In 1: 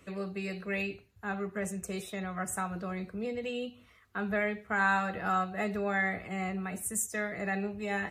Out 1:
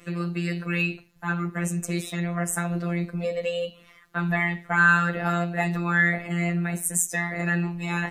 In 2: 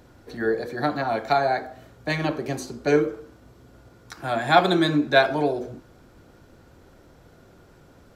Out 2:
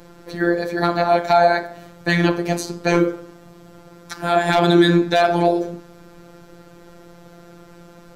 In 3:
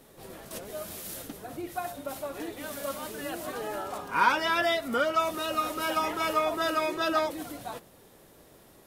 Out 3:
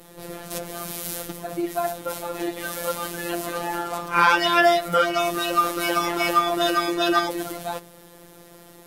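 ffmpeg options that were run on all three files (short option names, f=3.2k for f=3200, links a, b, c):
-af "asoftclip=type=hard:threshold=-11.5dB,afftfilt=real='hypot(re,im)*cos(PI*b)':imag='0':win_size=1024:overlap=0.75,alimiter=level_in=12.5dB:limit=-1dB:release=50:level=0:latency=1,volume=-1dB"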